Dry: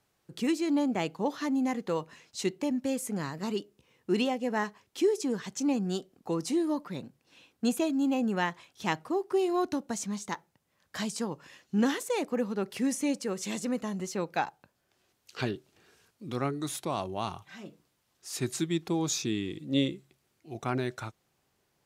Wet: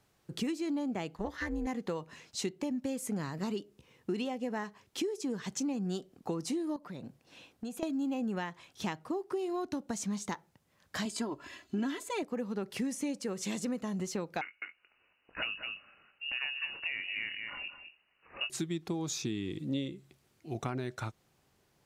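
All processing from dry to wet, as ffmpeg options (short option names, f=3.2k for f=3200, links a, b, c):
-filter_complex "[0:a]asettb=1/sr,asplit=3[a][b][c];[a]atrim=end=1.154[d];[b]atrim=start=1.15:end=1.67,asetpts=PTS-STARTPTS,afade=t=in:d=0.004:c=qsin,afade=t=out:st=0.516:d=0.004:c=qsin,equalizer=f=1.8k:w=4.3:g=14.5,tremolo=f=220:d=0.889[e];[c]atrim=start=1.666[f];[d][e]acrossfade=d=0.004:c1=hsin:c2=qsin[g];[g][f]acrossfade=d=0.004:c1=qsin:c2=hsin,asettb=1/sr,asplit=3[h][i][j];[h]atrim=end=6.764[k];[i]atrim=start=6.76:end=7.83,asetpts=PTS-STARTPTS,afade=t=in:d=0.004:c=qsin,afade=t=out:st=1.066:d=0.004:c=qsin,equalizer=f=650:w=2.3:g=4.5,acompressor=threshold=-43dB:ratio=5:attack=3.2:release=140:knee=1:detection=peak[l];[j]atrim=start=7.826[m];[k][l]acrossfade=d=0.004:c1=hsin:c2=qsin[n];[n][m]acrossfade=d=0.004:c1=qsin:c2=hsin,asettb=1/sr,asplit=3[o][p][q];[o]atrim=end=11.054[r];[p]atrim=start=11.05:end=12.23,asetpts=PTS-STARTPTS,afade=t=in:d=0.004:c=qsin,afade=t=out:st=1.176:d=0.004:c=qsin,equalizer=f=12k:w=0.66:g=-5,bandreject=f=5.7k:w=6.5,aecho=1:1:3:0.9,atrim=end_sample=52038[s];[q]atrim=start=12.226[t];[r][s]acrossfade=d=0.004:c1=hsin:c2=qsin[u];[u][t]acrossfade=d=0.004:c1=qsin:c2=hsin,asettb=1/sr,asplit=3[v][w][x];[v]atrim=end=14.414[y];[w]atrim=start=14.41:end=18.5,asetpts=PTS-STARTPTS,afade=t=in:d=0.004:c=qsin,afade=t=out:st=4.086:d=0.004:c=qsin,asplit=2[z][aa];[aa]adelay=22,volume=-12dB[ab];[z][ab]amix=inputs=2:normalize=0,atrim=end_sample=180369,aecho=1:1:207:0.316,atrim=end_sample=180369,lowpass=f=2.6k:t=q:w=0.5098,lowpass=f=2.6k:t=q:w=0.6013,lowpass=f=2.6k:t=q:w=0.9,lowpass=f=2.6k:t=q:w=2.563,afreqshift=-3000[ac];[x]atrim=start=18.496[ad];[y][ac]acrossfade=d=0.004:c1=hsin:c2=qsin[ae];[ae][ad]acrossfade=d=0.004:c1=qsin:c2=hsin,highshelf=f=12k:g=-3,acompressor=threshold=-36dB:ratio=6,lowshelf=f=220:g=4,volume=2.5dB"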